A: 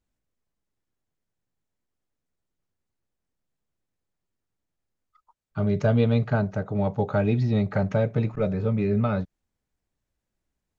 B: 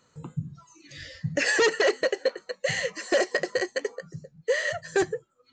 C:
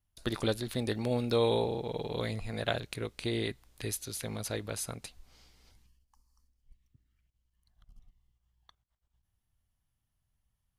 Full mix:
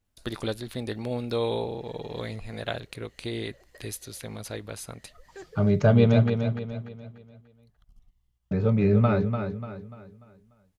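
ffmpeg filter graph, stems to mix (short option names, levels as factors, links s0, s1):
-filter_complex "[0:a]volume=1.26,asplit=3[s0][s1][s2];[s0]atrim=end=6.3,asetpts=PTS-STARTPTS,afade=t=out:st=6.296:d=0.004:c=hsin[s3];[s1]atrim=start=6.3:end=8.51,asetpts=PTS-STARTPTS,volume=0[s4];[s2]atrim=start=8.51,asetpts=PTS-STARTPTS,afade=t=in:d=0.004:c=hsin[s5];[s3][s4][s5]concat=n=3:v=0:a=1,asplit=2[s6][s7];[s7]volume=0.447[s8];[1:a]adelay=400,volume=0.158,asplit=2[s9][s10];[s10]volume=0.0794[s11];[2:a]adynamicequalizer=threshold=0.00316:dfrequency=4200:dqfactor=0.7:tfrequency=4200:tqfactor=0.7:attack=5:release=100:ratio=0.375:range=2.5:mode=cutabove:tftype=highshelf,volume=1,asplit=2[s12][s13];[s13]apad=whole_len=261442[s14];[s9][s14]sidechaincompress=threshold=0.00112:ratio=16:attack=26:release=241[s15];[s8][s11]amix=inputs=2:normalize=0,aecho=0:1:294|588|882|1176|1470:1|0.39|0.152|0.0593|0.0231[s16];[s6][s15][s12][s16]amix=inputs=4:normalize=0"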